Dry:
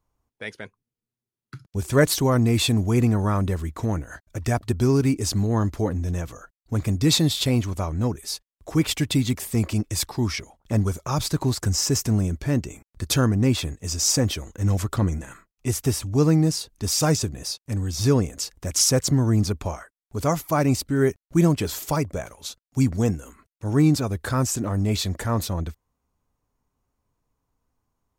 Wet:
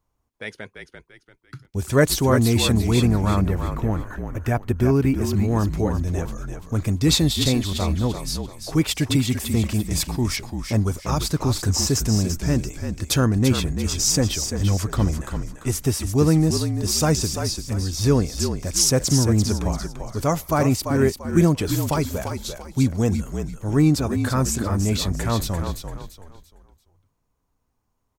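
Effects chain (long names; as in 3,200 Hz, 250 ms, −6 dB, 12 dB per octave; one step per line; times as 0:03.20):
0:03.11–0:05.34: flat-topped bell 6,100 Hz −9.5 dB
echo with shifted repeats 341 ms, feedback 33%, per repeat −44 Hz, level −7 dB
level +1 dB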